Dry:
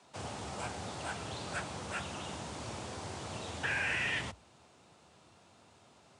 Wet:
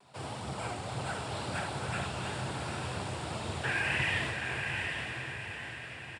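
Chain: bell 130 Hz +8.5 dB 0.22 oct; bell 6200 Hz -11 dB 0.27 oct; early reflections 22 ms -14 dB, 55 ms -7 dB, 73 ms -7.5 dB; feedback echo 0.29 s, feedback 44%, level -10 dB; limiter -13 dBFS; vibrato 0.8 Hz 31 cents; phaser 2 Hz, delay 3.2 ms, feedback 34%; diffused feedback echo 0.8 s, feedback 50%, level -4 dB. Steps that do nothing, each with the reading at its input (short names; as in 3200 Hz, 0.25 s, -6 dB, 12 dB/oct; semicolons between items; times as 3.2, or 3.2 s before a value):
limiter -13 dBFS: input peak -19.5 dBFS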